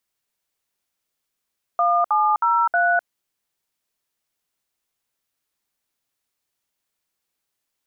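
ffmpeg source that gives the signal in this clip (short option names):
-f lavfi -i "aevalsrc='0.126*clip(min(mod(t,0.316),0.254-mod(t,0.316))/0.002,0,1)*(eq(floor(t/0.316),0)*(sin(2*PI*697*mod(t,0.316))+sin(2*PI*1209*mod(t,0.316)))+eq(floor(t/0.316),1)*(sin(2*PI*852*mod(t,0.316))+sin(2*PI*1209*mod(t,0.316)))+eq(floor(t/0.316),2)*(sin(2*PI*941*mod(t,0.316))+sin(2*PI*1336*mod(t,0.316)))+eq(floor(t/0.316),3)*(sin(2*PI*697*mod(t,0.316))+sin(2*PI*1477*mod(t,0.316))))':d=1.264:s=44100"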